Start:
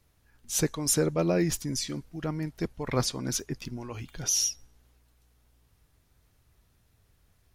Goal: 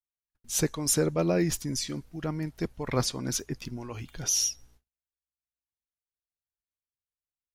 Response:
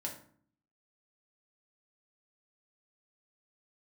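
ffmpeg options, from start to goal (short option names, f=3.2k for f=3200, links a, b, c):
-af "agate=range=-44dB:threshold=-56dB:ratio=16:detection=peak"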